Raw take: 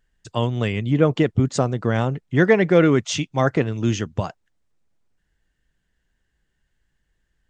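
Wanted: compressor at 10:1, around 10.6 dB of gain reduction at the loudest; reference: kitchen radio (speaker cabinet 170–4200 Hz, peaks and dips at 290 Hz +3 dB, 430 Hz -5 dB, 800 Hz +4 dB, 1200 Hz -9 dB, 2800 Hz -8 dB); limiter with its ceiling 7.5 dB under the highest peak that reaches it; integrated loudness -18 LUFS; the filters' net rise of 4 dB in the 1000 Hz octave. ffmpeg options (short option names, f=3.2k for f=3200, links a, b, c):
-af "equalizer=f=1k:t=o:g=6,acompressor=threshold=-20dB:ratio=10,alimiter=limit=-15.5dB:level=0:latency=1,highpass=170,equalizer=f=290:t=q:w=4:g=3,equalizer=f=430:t=q:w=4:g=-5,equalizer=f=800:t=q:w=4:g=4,equalizer=f=1.2k:t=q:w=4:g=-9,equalizer=f=2.8k:t=q:w=4:g=-8,lowpass=f=4.2k:w=0.5412,lowpass=f=4.2k:w=1.3066,volume=12dB"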